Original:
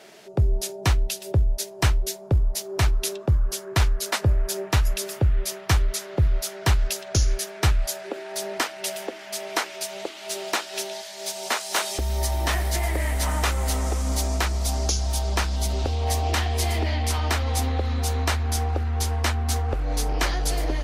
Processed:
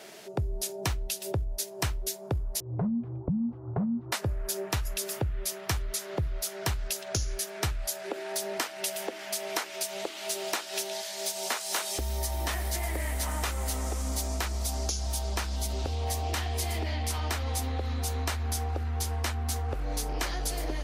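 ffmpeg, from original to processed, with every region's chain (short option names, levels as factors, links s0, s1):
-filter_complex "[0:a]asettb=1/sr,asplit=3[s0][s1][s2];[s0]atrim=end=2.604[s3];[s1]atrim=start=2.6:end=4.12,asetpts=PTS-STARTPTS,afade=t=in:d=0.004:c=qsin,afade=t=out:st=1.516:d=0.004:c=qsin,lowpass=f=1100:w=0.5412,lowpass=f=1100:w=1.3066,afreqshift=-270[s4];[s2]atrim=start=4.116[s5];[s3][s4]acrossfade=d=0.004:c1=hsin:c2=qsin[s6];[s6][s5]acrossfade=d=0.004:c1=qsin:c2=hsin,highpass=44,highshelf=f=8400:g=7,acompressor=threshold=0.0316:ratio=3"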